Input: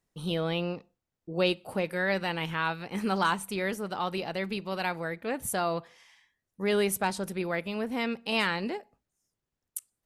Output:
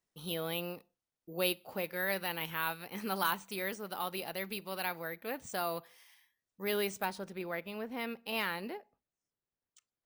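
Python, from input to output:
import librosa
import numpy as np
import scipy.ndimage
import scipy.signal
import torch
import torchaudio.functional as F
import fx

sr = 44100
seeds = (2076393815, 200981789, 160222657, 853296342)

y = fx.low_shelf(x, sr, hz=210.0, db=-8.0)
y = np.repeat(scipy.signal.resample_poly(y, 1, 3), 3)[:len(y)]
y = fx.high_shelf(y, sr, hz=4500.0, db=fx.steps((0.0, 8.0), (7.04, -3.5), (8.73, -9.5)))
y = y * 10.0 ** (-6.0 / 20.0)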